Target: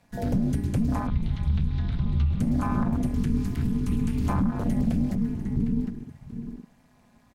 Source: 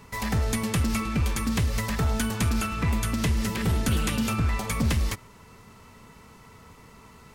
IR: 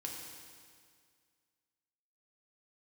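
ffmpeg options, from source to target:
-filter_complex "[0:a]asplit=2[a][b];[b]adelay=756,lowpass=f=1.5k:p=1,volume=-4dB,asplit=2[c][d];[d]adelay=756,lowpass=f=1.5k:p=1,volume=0.2,asplit=2[e][f];[f]adelay=756,lowpass=f=1.5k:p=1,volume=0.2[g];[a][c][e][g]amix=inputs=4:normalize=0,asplit=2[h][i];[1:a]atrim=start_sample=2205,adelay=132[j];[i][j]afir=irnorm=-1:irlink=0,volume=-12dB[k];[h][k]amix=inputs=2:normalize=0,tremolo=f=210:d=0.974,asettb=1/sr,asplit=3[l][m][n];[l]atrim=end=1.074[o];[m]atrim=start=1.07:end=2.4,asetpts=PTS-STARTPTS,afade=t=in:d=0.004:c=qsin,afade=t=out:st=1.326:d=0.004:c=qsin,highpass=160,equalizer=f=230:t=q:w=4:g=7,equalizer=f=670:t=q:w=4:g=-9,equalizer=f=2.1k:t=q:w=4:g=-4,equalizer=f=4k:t=q:w=4:g=9,lowpass=f=4.3k:w=0.5412,lowpass=f=4.3k:w=1.3066[p];[n]atrim=start=2.396[q];[o][p]acrossfade=d=0.004:c1=hsin:c2=qsin[r];[r][q]acrossfade=d=0.004:c1=qsin:c2=hsin,asplit=2[s][t];[t]aecho=0:1:696|1392|2088:0.119|0.0416|0.0146[u];[s][u]amix=inputs=2:normalize=0,afreqshift=-300,asettb=1/sr,asplit=3[v][w][x];[v]atrim=end=3.064[y];[w]atrim=start=3.06:end=4.3,asetpts=PTS-STARTPTS,afade=t=in:d=0.004:c=qsin,afade=t=out:st=1.236:d=0.004:c=qsin,equalizer=f=240:w=0.44:g=-4.5[z];[x]atrim=start=4.296[aa];[y][z]acrossfade=d=0.004:c1=hsin:c2=qsin[ab];[ab][aa]acrossfade=d=0.004:c1=qsin:c2=hsin,afwtdn=0.0251,alimiter=limit=-23.5dB:level=0:latency=1:release=208,volume=7.5dB"

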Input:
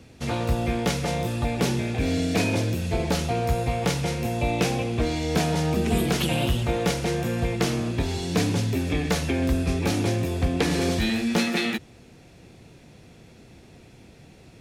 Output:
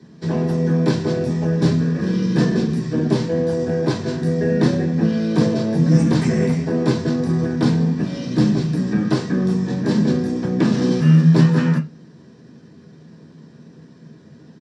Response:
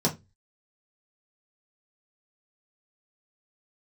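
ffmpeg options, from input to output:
-filter_complex "[0:a]highpass=240,asetrate=31183,aresample=44100,atempo=1.41421[a];[1:a]atrim=start_sample=2205,asetrate=43218,aresample=44100[b];[a][b]afir=irnorm=-1:irlink=0,volume=-9.5dB"

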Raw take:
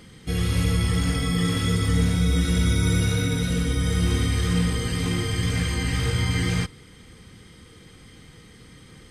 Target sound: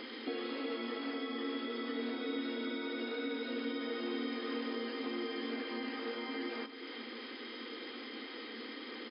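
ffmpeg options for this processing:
-filter_complex "[0:a]afftfilt=real='re*between(b*sr/4096,220,5200)':imag='im*between(b*sr/4096,220,5200)':win_size=4096:overlap=0.75,acompressor=threshold=-42dB:ratio=6,acrossover=split=400|1200[a][b][c];[c]alimiter=level_in=22.5dB:limit=-24dB:level=0:latency=1,volume=-22.5dB[d];[a][b][d]amix=inputs=3:normalize=0,aecho=1:1:375:0.266,volume=6.5dB"

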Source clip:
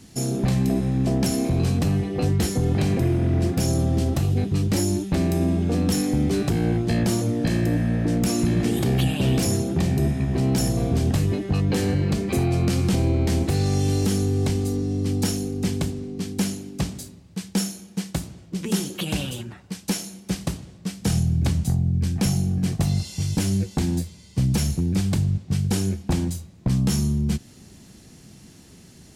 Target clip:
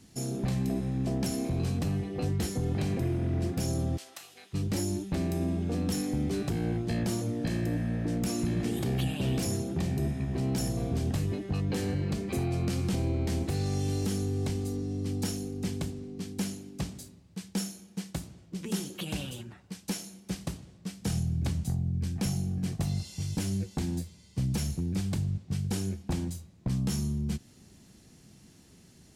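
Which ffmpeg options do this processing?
-filter_complex "[0:a]asplit=3[a][b][c];[a]afade=t=out:st=3.96:d=0.02[d];[b]highpass=1.3k,afade=t=in:st=3.96:d=0.02,afade=t=out:st=4.53:d=0.02[e];[c]afade=t=in:st=4.53:d=0.02[f];[d][e][f]amix=inputs=3:normalize=0,volume=-8.5dB"

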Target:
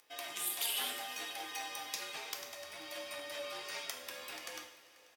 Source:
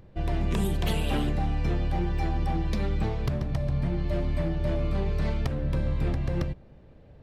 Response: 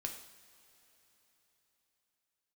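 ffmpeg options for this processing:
-filter_complex "[0:a]highpass=510,aderivative,bandreject=f=3.9k:w=15,asplit=2[a][b];[b]alimiter=level_in=11dB:limit=-24dB:level=0:latency=1:release=431,volume=-11dB,volume=-0.5dB[c];[a][c]amix=inputs=2:normalize=0,flanger=delay=5.8:depth=5.4:regen=84:speed=0.44:shape=triangular,atempo=1.4,afreqshift=-58,asetrate=48091,aresample=44100,atempo=0.917004,aecho=1:1:488:0.0794[d];[1:a]atrim=start_sample=2205[e];[d][e]afir=irnorm=-1:irlink=0,volume=11.5dB"

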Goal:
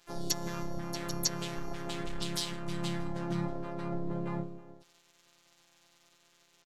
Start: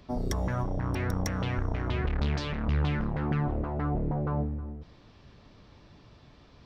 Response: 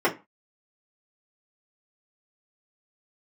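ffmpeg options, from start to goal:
-filter_complex "[0:a]aexciter=amount=5.5:drive=7.3:freq=3.6k,afftfilt=real='hypot(re,im)*cos(PI*b)':imag='0':win_size=1024:overlap=0.75,aresample=16000,aeval=exprs='sgn(val(0))*max(abs(val(0))-0.00447,0)':c=same,aresample=44100,asplit=4[a][b][c][d];[b]asetrate=35002,aresample=44100,atempo=1.25992,volume=-4dB[e];[c]asetrate=52444,aresample=44100,atempo=0.840896,volume=-8dB[f];[d]asetrate=88200,aresample=44100,atempo=0.5,volume=-7dB[g];[a][e][f][g]amix=inputs=4:normalize=0,volume=-5dB"

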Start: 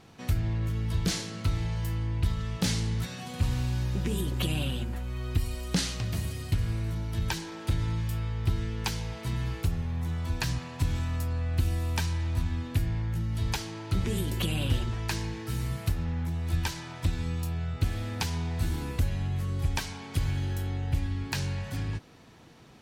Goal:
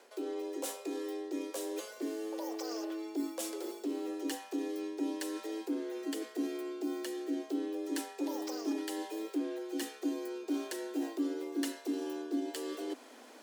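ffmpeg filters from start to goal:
-af "asetrate=74970,aresample=44100,areverse,acompressor=threshold=-36dB:ratio=6,areverse,asubboost=boost=5:cutoff=70,afreqshift=220"

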